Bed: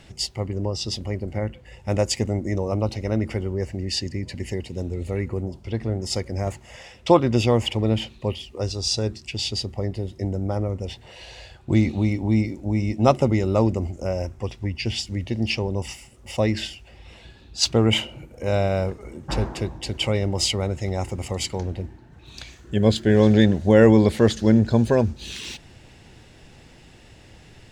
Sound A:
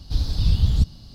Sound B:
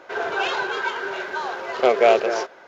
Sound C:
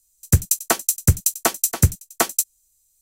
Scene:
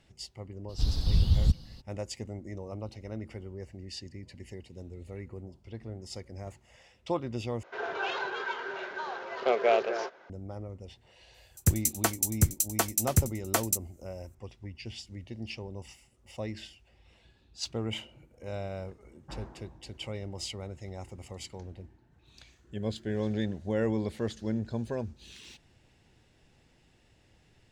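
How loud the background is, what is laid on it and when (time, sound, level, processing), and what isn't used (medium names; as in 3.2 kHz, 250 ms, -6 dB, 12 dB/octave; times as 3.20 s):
bed -15.5 dB
0.68 s: add A -5 dB, fades 0.02 s
7.63 s: replace with B -9 dB + low-pass 6 kHz
11.34 s: add C -8.5 dB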